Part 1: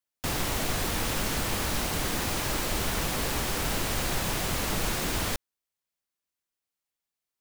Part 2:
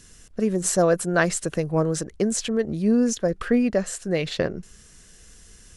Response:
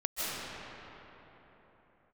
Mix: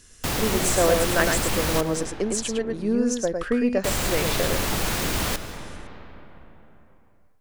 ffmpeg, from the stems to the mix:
-filter_complex "[0:a]volume=2.5dB,asplit=3[a][b][c];[a]atrim=end=1.81,asetpts=PTS-STARTPTS,afade=t=out:st=1.806:d=0.004:c=hsin[d];[b]atrim=start=1.81:end=3.84,asetpts=PTS-STARTPTS,volume=0[e];[c]atrim=start=3.84,asetpts=PTS-STARTPTS,afade=t=in:d=0.004:c=hsin[f];[d][e][f]concat=n=3:v=0:a=1,asplit=2[g][h];[h]volume=-16dB[i];[1:a]equalizer=f=160:w=1.6:g=-7.5,volume=-1.5dB,asplit=2[j][k];[k]volume=-4.5dB[l];[2:a]atrim=start_sample=2205[m];[i][m]afir=irnorm=-1:irlink=0[n];[l]aecho=0:1:106:1[o];[g][j][n][o]amix=inputs=4:normalize=0,aeval=exprs='0.531*(cos(1*acos(clip(val(0)/0.531,-1,1)))-cos(1*PI/2))+0.0841*(cos(2*acos(clip(val(0)/0.531,-1,1)))-cos(2*PI/2))':c=same"

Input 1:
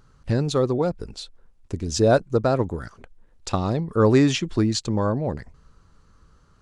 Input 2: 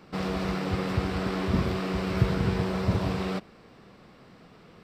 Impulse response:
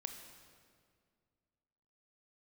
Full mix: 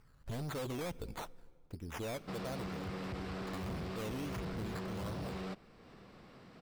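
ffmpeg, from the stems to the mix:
-filter_complex "[0:a]bandreject=f=390:w=12,dynaudnorm=f=280:g=7:m=6dB,acrusher=samples=12:mix=1:aa=0.000001:lfo=1:lforange=7.2:lforate=1.5,volume=-9.5dB,afade=t=out:st=1.43:d=0.29:silence=0.266073,asplit=2[a][b];[b]volume=-18dB[c];[1:a]acompressor=mode=upward:threshold=-41dB:ratio=2.5,adelay=2150,volume=-8.5dB[d];[2:a]atrim=start_sample=2205[e];[c][e]afir=irnorm=-1:irlink=0[f];[a][d][f]amix=inputs=3:normalize=0,volume=34dB,asoftclip=hard,volume=-34dB,acompressor=threshold=-38dB:ratio=6"

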